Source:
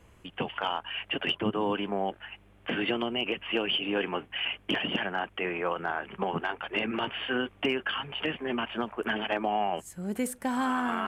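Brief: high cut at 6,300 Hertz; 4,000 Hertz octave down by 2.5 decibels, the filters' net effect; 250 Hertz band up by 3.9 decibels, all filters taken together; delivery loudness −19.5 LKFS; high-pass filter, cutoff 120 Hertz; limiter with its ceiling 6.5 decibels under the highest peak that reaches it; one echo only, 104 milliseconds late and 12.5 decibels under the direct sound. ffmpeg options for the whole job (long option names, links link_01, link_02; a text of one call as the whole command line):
ffmpeg -i in.wav -af "highpass=120,lowpass=6300,equalizer=frequency=250:width_type=o:gain=5,equalizer=frequency=4000:width_type=o:gain=-4,alimiter=limit=-20dB:level=0:latency=1,aecho=1:1:104:0.237,volume=12dB" out.wav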